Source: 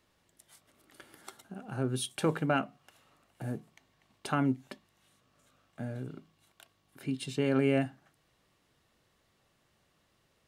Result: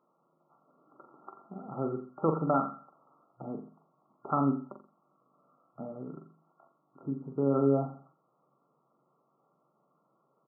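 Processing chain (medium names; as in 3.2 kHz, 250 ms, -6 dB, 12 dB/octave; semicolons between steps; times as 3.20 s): tilt EQ +2 dB/octave; feedback delay 87 ms, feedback 35%, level -19.5 dB; FFT band-pass 120–1400 Hz; on a send: flutter echo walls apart 7.4 m, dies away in 0.39 s; on the sum: trim +3 dB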